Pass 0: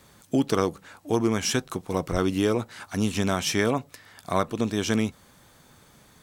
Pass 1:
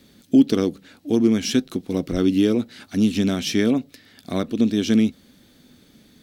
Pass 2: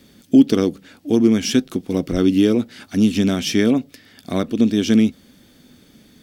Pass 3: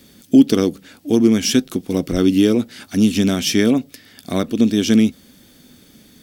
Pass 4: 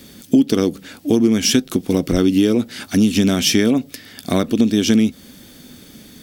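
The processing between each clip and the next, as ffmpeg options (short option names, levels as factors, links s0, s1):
-af "equalizer=f=125:t=o:w=1:g=-4,equalizer=f=250:t=o:w=1:g=12,equalizer=f=1000:t=o:w=1:g=-12,equalizer=f=4000:t=o:w=1:g=6,equalizer=f=8000:t=o:w=1:g=-6"
-af "bandreject=f=4000:w=12,volume=1.41"
-af "highshelf=f=5900:g=7.5,volume=1.12"
-af "acompressor=threshold=0.112:ratio=3,volume=2"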